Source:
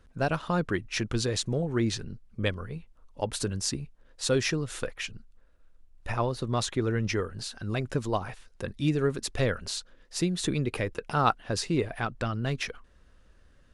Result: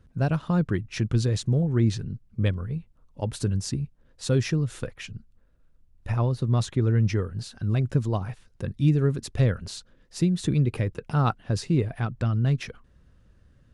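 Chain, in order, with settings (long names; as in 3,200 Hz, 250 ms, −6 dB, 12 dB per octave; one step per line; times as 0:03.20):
parametric band 120 Hz +14 dB 2.3 octaves
level −4.5 dB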